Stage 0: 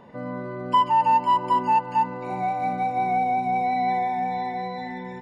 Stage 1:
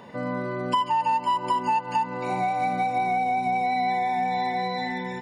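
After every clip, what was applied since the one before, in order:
high-pass filter 73 Hz
high-shelf EQ 2,300 Hz +10 dB
downward compressor, threshold −24 dBFS, peak gain reduction 10 dB
level +2.5 dB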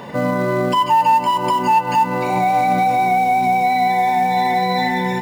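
in parallel at −4 dB: floating-point word with a short mantissa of 2 bits
on the sum: brickwall limiter −17.5 dBFS, peak gain reduction 9 dB
convolution reverb, pre-delay 7 ms, DRR 12 dB
level +7.5 dB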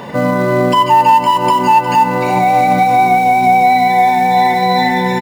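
single-tap delay 359 ms −12 dB
level +5 dB

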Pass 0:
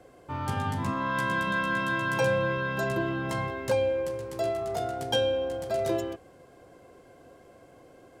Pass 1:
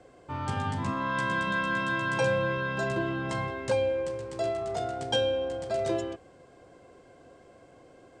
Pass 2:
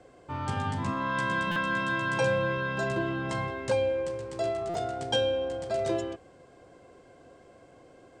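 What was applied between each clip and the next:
Chebyshev low-pass filter 8,600 Hz, order 4
buffer that repeats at 0:01.51/0:04.69, samples 256, times 8

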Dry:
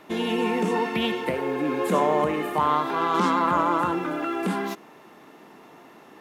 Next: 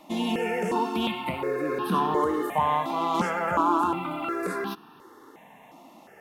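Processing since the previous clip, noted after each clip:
step-sequenced phaser 2.8 Hz 420–2,100 Hz
level +1.5 dB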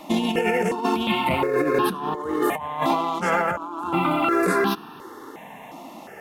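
compressor whose output falls as the input rises −29 dBFS, ratio −0.5
level +7 dB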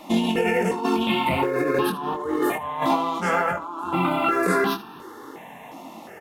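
ambience of single reflections 22 ms −5 dB, 78 ms −16 dB
level −1.5 dB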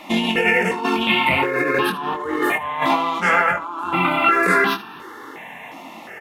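parametric band 2,100 Hz +11.5 dB 1.5 octaves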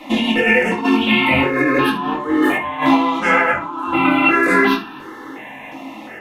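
convolution reverb RT60 0.25 s, pre-delay 4 ms, DRR −3.5 dB
level −3 dB

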